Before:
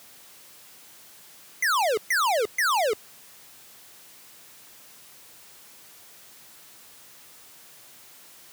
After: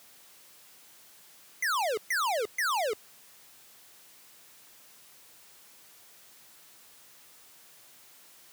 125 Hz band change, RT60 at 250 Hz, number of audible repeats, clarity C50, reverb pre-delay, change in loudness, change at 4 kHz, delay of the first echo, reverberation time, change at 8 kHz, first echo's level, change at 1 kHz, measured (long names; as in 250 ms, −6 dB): can't be measured, no reverb audible, no echo audible, no reverb audible, no reverb audible, −5.5 dB, −5.5 dB, no echo audible, no reverb audible, −5.5 dB, no echo audible, −5.5 dB